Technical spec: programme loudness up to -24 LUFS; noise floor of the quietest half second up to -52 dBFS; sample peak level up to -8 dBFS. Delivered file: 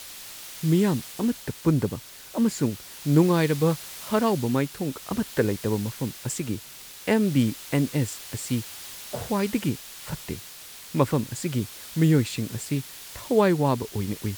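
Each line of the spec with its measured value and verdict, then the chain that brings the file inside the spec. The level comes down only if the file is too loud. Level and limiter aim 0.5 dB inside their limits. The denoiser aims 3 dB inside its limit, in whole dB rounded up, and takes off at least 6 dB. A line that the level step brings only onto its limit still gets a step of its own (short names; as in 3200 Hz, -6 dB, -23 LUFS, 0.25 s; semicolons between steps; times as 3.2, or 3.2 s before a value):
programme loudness -26.0 LUFS: OK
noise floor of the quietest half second -43 dBFS: fail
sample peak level -6.5 dBFS: fail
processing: denoiser 12 dB, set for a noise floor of -43 dBFS; limiter -8.5 dBFS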